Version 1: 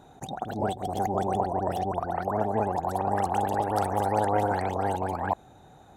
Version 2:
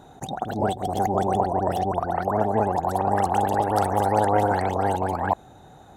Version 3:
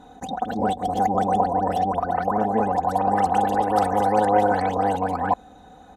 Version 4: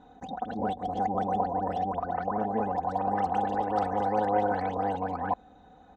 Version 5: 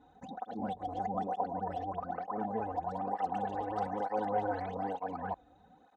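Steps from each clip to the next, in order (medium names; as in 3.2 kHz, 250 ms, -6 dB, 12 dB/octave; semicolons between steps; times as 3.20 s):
band-stop 2.4 kHz, Q 17; trim +4.5 dB
treble shelf 9.7 kHz -11.5 dB; comb 4 ms, depth 95%; trim -1.5 dB
distance through air 130 m; trim -7 dB
cancelling through-zero flanger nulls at 1.1 Hz, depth 5.4 ms; trim -4 dB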